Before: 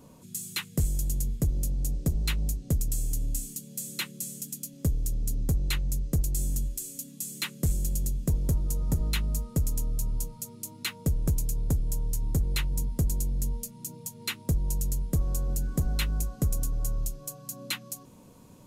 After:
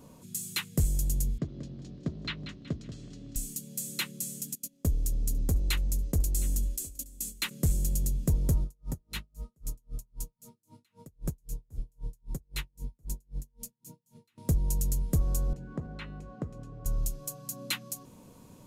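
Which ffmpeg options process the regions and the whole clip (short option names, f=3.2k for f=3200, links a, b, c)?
-filter_complex "[0:a]asettb=1/sr,asplit=3[a][b][c];[a]atrim=end=1.384[d];[b]atrim=start=1.38:end=3.36,asetpts=PTS-STARTPTS,afade=t=in:d=0.004:c=qsin,afade=t=out:st=1.976:d=0.004:c=qsin,highpass=180,equalizer=f=490:t=q:w=4:g=-7,equalizer=f=810:t=q:w=4:g=-8,equalizer=f=2.5k:t=q:w=4:g=-4,lowpass=f=4k:w=0.5412,lowpass=f=4k:w=1.3066,aecho=1:1:186|372|558|744:0.316|0.12|0.0457|0.0174,atrim=end_sample=87318[e];[c]atrim=start=3.356[f];[d][e]acrossfade=d=0.004:c1=hsin:c2=qsin[g];[g][f]acrossfade=d=0.004:c1=qsin:c2=hsin,asettb=1/sr,asplit=3[h][i][j];[h]atrim=end=4.554[k];[i]atrim=start=4.55:end=7.51,asetpts=PTS-STARTPTS,afade=t=in:d=0.004:c=qsin,afade=t=out:st=2.956:d=0.004:c=qsin,equalizer=f=140:t=o:w=0.41:g=-9,agate=range=-16dB:threshold=-40dB:ratio=16:release=100:detection=peak,aecho=1:1:712:0.0841,atrim=end_sample=130536[l];[j]atrim=start=7.506[m];[k][l]acrossfade=d=0.004:c1=hsin:c2=qsin[n];[n][m]acrossfade=d=0.004:c1=qsin:c2=hsin,asettb=1/sr,asplit=3[o][p][q];[o]atrim=end=8.644[r];[p]atrim=start=8.64:end=14.38,asetpts=PTS-STARTPTS,afade=t=in:d=0.004:c=qsin,afade=t=out:st=5.736:d=0.004:c=qsin,flanger=delay=4.7:depth=4.9:regen=-54:speed=1.1:shape=triangular,aeval=exprs='val(0)*pow(10,-40*(0.5-0.5*cos(2*PI*3.8*n/s))/20)':c=same[s];[q]atrim=start=14.376[t];[r][s]acrossfade=d=0.004:c1=hsin:c2=qsin[u];[u][t]acrossfade=d=0.004:c1=qsin:c2=hsin,asettb=1/sr,asplit=3[v][w][x];[v]atrim=end=15.534[y];[w]atrim=start=15.53:end=16.86,asetpts=PTS-STARTPTS,afade=t=in:d=0.004:c=qsin,afade=t=out:st=1.326:d=0.004:c=qsin,acompressor=threshold=-28dB:ratio=5:attack=3.2:release=140:knee=1:detection=peak,highpass=120,lowpass=2.1k,bandreject=f=244.5:t=h:w=4,bandreject=f=489:t=h:w=4,bandreject=f=733.5:t=h:w=4,bandreject=f=978:t=h:w=4,bandreject=f=1.2225k:t=h:w=4,bandreject=f=1.467k:t=h:w=4,bandreject=f=1.7115k:t=h:w=4,bandreject=f=1.956k:t=h:w=4,bandreject=f=2.2005k:t=h:w=4,bandreject=f=2.445k:t=h:w=4,bandreject=f=2.6895k:t=h:w=4,bandreject=f=2.934k:t=h:w=4,bandreject=f=3.1785k:t=h:w=4,bandreject=f=3.423k:t=h:w=4,bandreject=f=3.6675k:t=h:w=4,bandreject=f=3.912k:t=h:w=4,bandreject=f=4.1565k:t=h:w=4,bandreject=f=4.401k:t=h:w=4,bandreject=f=4.6455k:t=h:w=4,bandreject=f=4.89k:t=h:w=4,bandreject=f=5.1345k:t=h:w=4,bandreject=f=5.379k:t=h:w=4,bandreject=f=5.6235k:t=h:w=4,bandreject=f=5.868k:t=h:w=4,bandreject=f=6.1125k:t=h:w=4,bandreject=f=6.357k:t=h:w=4,bandreject=f=6.6015k:t=h:w=4,bandreject=f=6.846k:t=h:w=4,bandreject=f=7.0905k:t=h:w=4,bandreject=f=7.335k:t=h:w=4,bandreject=f=7.5795k:t=h:w=4,bandreject=f=7.824k:t=h:w=4,bandreject=f=8.0685k:t=h:w=4,bandreject=f=8.313k:t=h:w=4,bandreject=f=8.5575k:t=h:w=4,bandreject=f=8.802k:t=h:w=4,bandreject=f=9.0465k:t=h:w=4,bandreject=f=9.291k:t=h:w=4,bandreject=f=9.5355k:t=h:w=4,bandreject=f=9.78k:t=h:w=4[z];[x]atrim=start=16.856[aa];[y][z]acrossfade=d=0.004:c1=hsin:c2=qsin[ab];[ab][aa]acrossfade=d=0.004:c1=qsin:c2=hsin"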